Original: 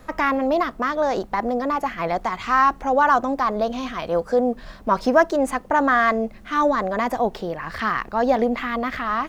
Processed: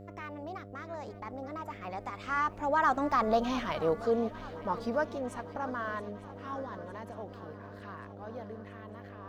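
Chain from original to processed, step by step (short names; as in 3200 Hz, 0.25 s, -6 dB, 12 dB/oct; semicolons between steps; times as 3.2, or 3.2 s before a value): Doppler pass-by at 3.46, 29 m/s, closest 12 m; swung echo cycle 0.904 s, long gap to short 3:1, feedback 63%, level -18 dB; buzz 100 Hz, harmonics 7, -44 dBFS -3 dB/oct; gain -4 dB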